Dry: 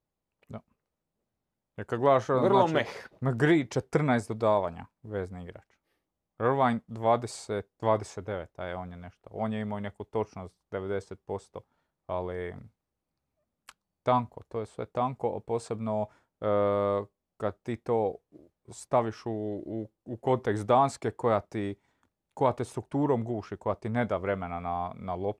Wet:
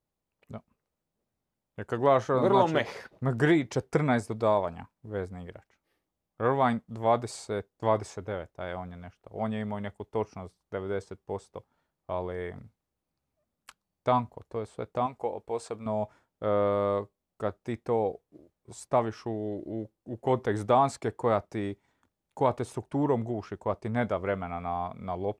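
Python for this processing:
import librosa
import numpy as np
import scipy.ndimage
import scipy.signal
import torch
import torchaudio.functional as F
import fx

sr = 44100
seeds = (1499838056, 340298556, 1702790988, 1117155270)

y = fx.peak_eq(x, sr, hz=140.0, db=-11.0, octaves=1.7, at=(15.06, 15.86))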